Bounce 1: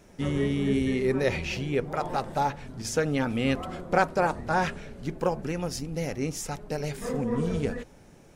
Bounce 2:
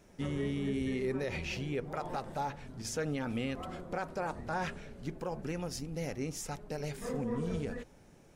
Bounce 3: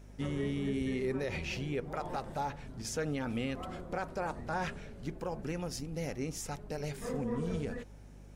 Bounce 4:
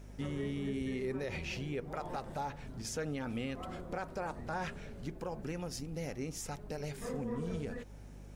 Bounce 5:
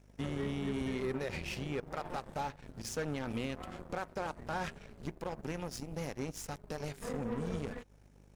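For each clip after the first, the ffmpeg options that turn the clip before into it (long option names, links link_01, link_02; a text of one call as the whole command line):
ffmpeg -i in.wav -af "alimiter=limit=-19.5dB:level=0:latency=1:release=75,volume=-6dB" out.wav
ffmpeg -i in.wav -af "aeval=exprs='val(0)+0.00282*(sin(2*PI*50*n/s)+sin(2*PI*2*50*n/s)/2+sin(2*PI*3*50*n/s)/3+sin(2*PI*4*50*n/s)/4+sin(2*PI*5*50*n/s)/5)':channel_layout=same" out.wav
ffmpeg -i in.wav -filter_complex "[0:a]asplit=2[link_01][link_02];[link_02]acompressor=threshold=-44dB:ratio=6,volume=2.5dB[link_03];[link_01][link_03]amix=inputs=2:normalize=0,acrusher=bits=11:mix=0:aa=0.000001,volume=-5.5dB" out.wav
ffmpeg -i in.wav -af "asoftclip=type=tanh:threshold=-34.5dB,aeval=exprs='0.0188*(cos(1*acos(clip(val(0)/0.0188,-1,1)))-cos(1*PI/2))+0.00596*(cos(3*acos(clip(val(0)/0.0188,-1,1)))-cos(3*PI/2))+0.000133*(cos(5*acos(clip(val(0)/0.0188,-1,1)))-cos(5*PI/2))':channel_layout=same,volume=5.5dB" out.wav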